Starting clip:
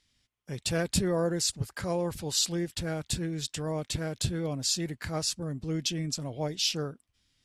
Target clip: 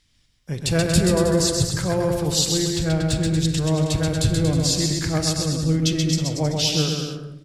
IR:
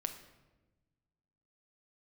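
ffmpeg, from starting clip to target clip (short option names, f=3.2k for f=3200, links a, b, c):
-filter_complex "[0:a]asettb=1/sr,asplit=3[a][b][c];[a]atrim=end=2.634[d];[b]atrim=start=2.63:end=3.29,asetpts=PTS-STARTPTS,afade=t=in:d=0.004:c=qsin,afade=t=out:st=0.656:d=0.004:c=qsin,adynamicsmooth=sensitivity=6.5:basefreq=7.6k[e];[c]atrim=start=3.286[f];[d][e]acrossfade=d=0.004:c1=hsin:c2=qsin[g];[g][f]acrossfade=d=0.004:c1=qsin:c2=hsin,aecho=1:1:130|234|317.2|383.8|437:0.631|0.398|0.251|0.158|0.1,asplit=2[h][i];[1:a]atrim=start_sample=2205,lowshelf=f=160:g=10.5[j];[i][j]afir=irnorm=-1:irlink=0,volume=4dB[k];[h][k]amix=inputs=2:normalize=0,volume=-2dB"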